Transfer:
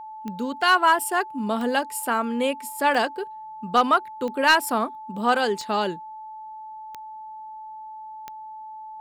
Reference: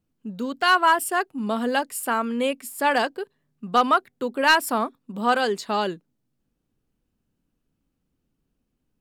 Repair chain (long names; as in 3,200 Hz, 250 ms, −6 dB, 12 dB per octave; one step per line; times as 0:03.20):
click removal
notch filter 870 Hz, Q 30